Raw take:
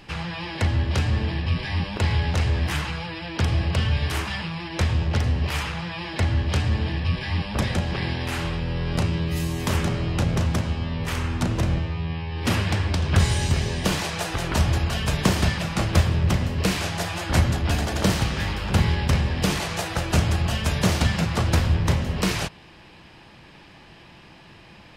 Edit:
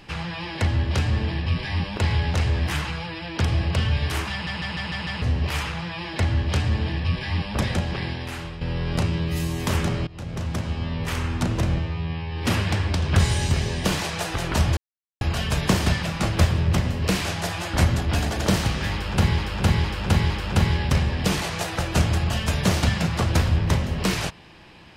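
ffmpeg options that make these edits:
ffmpeg -i in.wav -filter_complex "[0:a]asplit=13[link_01][link_02][link_03][link_04][link_05][link_06][link_07][link_08][link_09][link_10][link_11][link_12][link_13];[link_01]atrim=end=4.472[link_14];[link_02]atrim=start=4.318:end=4.472[link_15];[link_03]atrim=start=4.318:end=4.472[link_16];[link_04]atrim=start=4.318:end=4.472[link_17];[link_05]atrim=start=4.318:end=4.472[link_18];[link_06]atrim=start=4.318:end=4.472[link_19];[link_07]atrim=start=5.218:end=8.61,asetpts=PTS-STARTPTS,afade=type=out:start_time=2.572:duration=0.82:silence=0.334965[link_20];[link_08]atrim=start=8.61:end=10.07,asetpts=PTS-STARTPTS,afade=type=in:duration=0.004:curve=hsin:silence=0.334965,afade=type=out:start_time=1.456:duration=0.004:curve=hsin:silence=0.0794328[link_21];[link_09]atrim=start=10.07:end=14.77,asetpts=PTS-STARTPTS,afade=type=in:duration=0.78:silence=0.0794328,afade=type=out:start_time=4.696:duration=0.004:curve=hsin,apad=pad_dur=0.44[link_22];[link_10]atrim=start=14.77:end=18.942,asetpts=PTS-STARTPTS,afade=type=in:duration=0.004:curve=hsin[link_23];[link_11]atrim=start=18.478:end=18.942[link_24];[link_12]atrim=start=18.478:end=18.942[link_25];[link_13]atrim=start=18.478[link_26];[link_14][link_15]acrossfade=duration=0.004:curve1=hsin:curve2=hsin[link_27];[link_27][link_16]acrossfade=duration=0.004:curve1=hsin:curve2=hsin[link_28];[link_28][link_17]acrossfade=duration=0.004:curve1=hsin:curve2=hsin[link_29];[link_29][link_18]acrossfade=duration=0.004:curve1=hsin:curve2=hsin[link_30];[link_30][link_19]acrossfade=duration=0.004:curve1=hsin:curve2=hsin[link_31];[link_20][link_21][link_22][link_23]concat=n=4:v=0:a=1[link_32];[link_31][link_32]acrossfade=duration=0.004:curve1=hsin:curve2=hsin[link_33];[link_33][link_24]acrossfade=duration=0.004:curve1=hsin:curve2=hsin[link_34];[link_34][link_25]acrossfade=duration=0.004:curve1=hsin:curve2=hsin[link_35];[link_35][link_26]acrossfade=duration=0.004:curve1=hsin:curve2=hsin" out.wav

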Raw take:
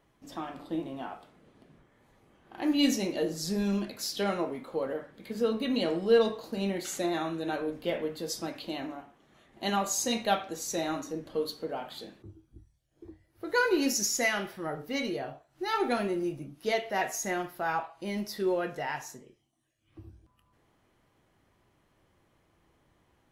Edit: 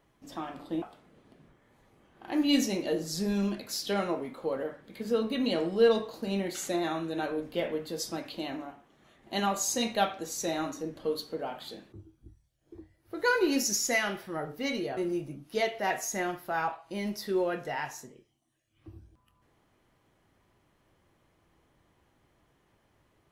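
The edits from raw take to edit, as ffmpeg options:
ffmpeg -i in.wav -filter_complex "[0:a]asplit=3[link_01][link_02][link_03];[link_01]atrim=end=0.822[link_04];[link_02]atrim=start=1.118:end=15.272[link_05];[link_03]atrim=start=16.078[link_06];[link_04][link_05]acrossfade=duration=0.004:curve1=hsin:curve2=hsin[link_07];[link_07][link_06]acrossfade=duration=0.004:curve1=hsin:curve2=hsin" out.wav

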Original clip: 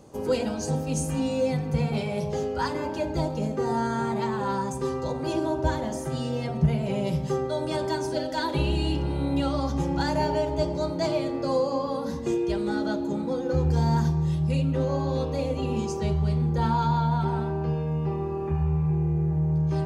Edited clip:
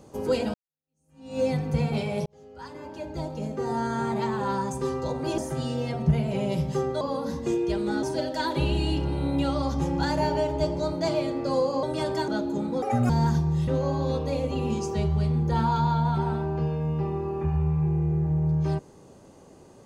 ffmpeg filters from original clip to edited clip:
ffmpeg -i in.wav -filter_complex "[0:a]asplit=11[link_01][link_02][link_03][link_04][link_05][link_06][link_07][link_08][link_09][link_10][link_11];[link_01]atrim=end=0.54,asetpts=PTS-STARTPTS,afade=type=out:start_time=0.536:duration=0.004:curve=hsin[link_12];[link_02]atrim=start=0.54:end=2.26,asetpts=PTS-STARTPTS,afade=type=in:duration=0.86:curve=exp,afade=type=out:start_time=1.716:duration=0.004:curve=hsin[link_13];[link_03]atrim=start=2.26:end=5.382,asetpts=PTS-STARTPTS,afade=type=in:duration=1.88[link_14];[link_04]atrim=start=5.928:end=7.562[link_15];[link_05]atrim=start=11.808:end=12.832[link_16];[link_06]atrim=start=8.008:end=11.812[link_17];[link_07]atrim=start=7.558:end=8.012[link_18];[link_08]atrim=start=12.828:end=13.374[link_19];[link_09]atrim=start=13.37:end=13.8,asetpts=PTS-STARTPTS,asetrate=68796,aresample=44100[link_20];[link_10]atrim=start=13.796:end=14.382[link_21];[link_11]atrim=start=14.738[link_22];[link_12][link_13][link_14]concat=n=3:v=0:a=1[link_23];[link_23][link_15]acrossfade=duration=0.004:curve1=hsin:curve2=hsin[link_24];[link_24][link_16]acrossfade=duration=0.004:curve1=hsin:curve2=hsin[link_25];[link_25][link_17]acrossfade=duration=0.004:curve1=hsin:curve2=hsin[link_26];[link_26][link_18]acrossfade=duration=0.004:curve1=hsin:curve2=hsin[link_27];[link_27][link_19]acrossfade=duration=0.004:curve1=hsin:curve2=hsin[link_28];[link_28][link_20]acrossfade=duration=0.004:curve1=hsin:curve2=hsin[link_29];[link_29][link_21]acrossfade=duration=0.004:curve1=hsin:curve2=hsin[link_30];[link_30][link_22]acrossfade=duration=0.004:curve1=hsin:curve2=hsin" out.wav

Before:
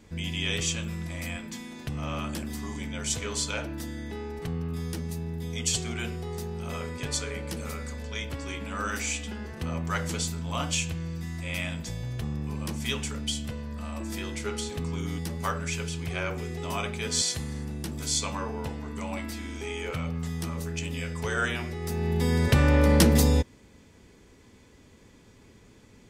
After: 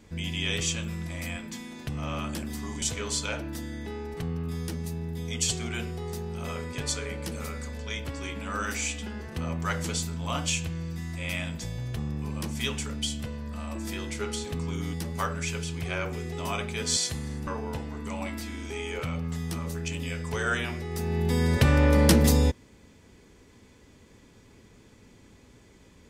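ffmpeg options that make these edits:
ffmpeg -i in.wav -filter_complex "[0:a]asplit=3[link_01][link_02][link_03];[link_01]atrim=end=2.822[link_04];[link_02]atrim=start=3.068:end=17.722[link_05];[link_03]atrim=start=18.378[link_06];[link_04][link_05]acrossfade=duration=0.004:curve1=hsin:curve2=hsin[link_07];[link_07][link_06]acrossfade=duration=0.004:curve1=hsin:curve2=hsin" out.wav

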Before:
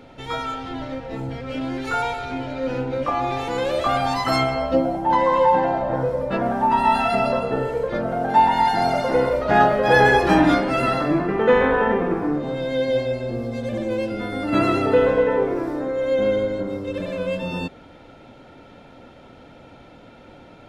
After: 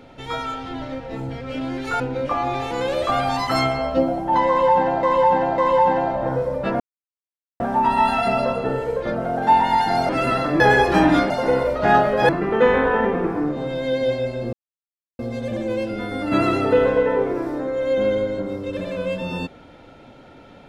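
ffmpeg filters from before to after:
ffmpeg -i in.wav -filter_complex "[0:a]asplit=10[link_01][link_02][link_03][link_04][link_05][link_06][link_07][link_08][link_09][link_10];[link_01]atrim=end=2.002[link_11];[link_02]atrim=start=2.768:end=5.802[link_12];[link_03]atrim=start=5.248:end=5.802[link_13];[link_04]atrim=start=5.248:end=6.47,asetpts=PTS-STARTPTS,afade=type=out:start_time=1.218:duration=0.004:curve=hsin,apad=pad_dur=0.8[link_14];[link_05]atrim=start=6.47:end=8.962,asetpts=PTS-STARTPTS,afade=type=in:duration=0.004:curve=hsin[link_15];[link_06]atrim=start=10.648:end=11.162[link_16];[link_07]atrim=start=9.948:end=10.652[link_17];[link_08]atrim=start=8.958:end=9.952[link_18];[link_09]atrim=start=11.158:end=13.4,asetpts=PTS-STARTPTS,afade=type=out:start_time=2.238:duration=0.004:curve=hsin,apad=pad_dur=0.66[link_19];[link_10]atrim=start=13.4,asetpts=PTS-STARTPTS,afade=type=in:duration=0.004:curve=hsin[link_20];[link_11][link_12]acrossfade=duration=0.004:curve1=hsin:curve2=hsin[link_21];[link_21][link_13]acrossfade=duration=0.004:curve1=hsin:curve2=hsin[link_22];[link_14][link_15]concat=n=2:v=0:a=1[link_23];[link_22][link_23]acrossfade=duration=0.004:curve1=hsin:curve2=hsin[link_24];[link_24][link_16]acrossfade=duration=0.004:curve1=hsin:curve2=hsin[link_25];[link_25][link_17]acrossfade=duration=0.004:curve1=hsin:curve2=hsin[link_26];[link_26][link_18]acrossfade=duration=0.004:curve1=hsin:curve2=hsin[link_27];[link_19][link_20]concat=n=2:v=0:a=1[link_28];[link_27][link_28]acrossfade=duration=0.004:curve1=hsin:curve2=hsin" out.wav

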